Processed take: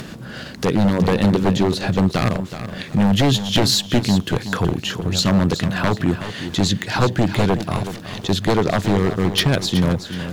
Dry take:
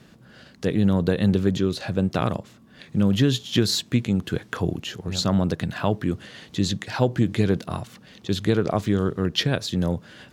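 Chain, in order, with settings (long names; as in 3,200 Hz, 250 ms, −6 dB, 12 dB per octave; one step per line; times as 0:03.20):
0:00.88–0:01.44: hum removal 47.32 Hz, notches 5
in parallel at +1 dB: upward compression, threshold −23 dBFS
on the sum: wave folding −9 dBFS
feedback echo at a low word length 373 ms, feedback 35%, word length 8 bits, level −11 dB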